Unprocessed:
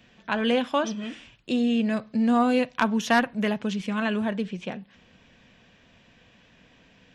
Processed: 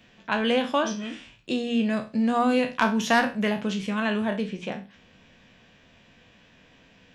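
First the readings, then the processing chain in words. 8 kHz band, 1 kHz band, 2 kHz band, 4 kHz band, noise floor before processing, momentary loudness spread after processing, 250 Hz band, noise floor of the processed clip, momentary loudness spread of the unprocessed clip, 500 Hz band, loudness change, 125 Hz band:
n/a, +1.0 dB, +1.5 dB, +1.5 dB, -58 dBFS, 12 LU, -1.0 dB, -57 dBFS, 13 LU, +0.5 dB, 0.0 dB, 0.0 dB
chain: spectral trails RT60 0.31 s; notches 60/120/180/240 Hz

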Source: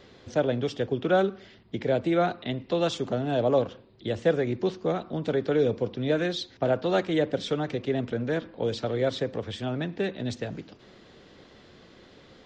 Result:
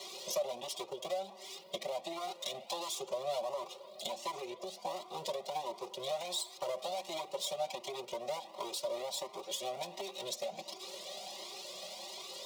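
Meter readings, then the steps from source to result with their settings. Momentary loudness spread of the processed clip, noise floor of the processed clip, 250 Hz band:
7 LU, -54 dBFS, -23.5 dB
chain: minimum comb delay 5.2 ms; HPF 260 Hz 24 dB/oct; high shelf 3300 Hz +11.5 dB; limiter -20.5 dBFS, peak gain reduction 9.5 dB; compressor 8:1, threshold -43 dBFS, peak gain reduction 17.5 dB; fixed phaser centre 660 Hz, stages 4; notch comb 440 Hz; band-limited delay 0.255 s, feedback 71%, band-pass 1200 Hz, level -16 dB; cascading flanger rising 1.4 Hz; gain +15 dB

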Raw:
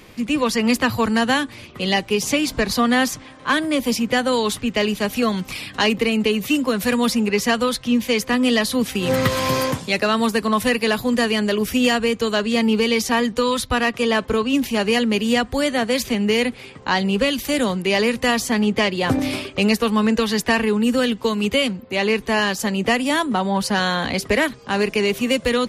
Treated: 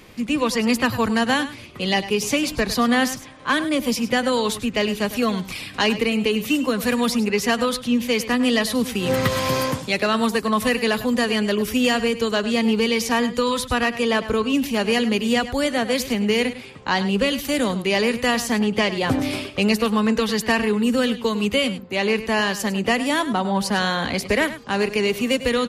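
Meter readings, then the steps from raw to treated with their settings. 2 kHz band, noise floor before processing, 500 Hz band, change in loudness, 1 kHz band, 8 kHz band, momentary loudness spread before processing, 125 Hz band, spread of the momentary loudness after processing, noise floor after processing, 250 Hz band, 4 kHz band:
-1.5 dB, -42 dBFS, -1.5 dB, -1.5 dB, -1.5 dB, -1.5 dB, 3 LU, -1.5 dB, 3 LU, -38 dBFS, -1.5 dB, -1.5 dB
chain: echo 0.102 s -13.5 dB; gain -1.5 dB

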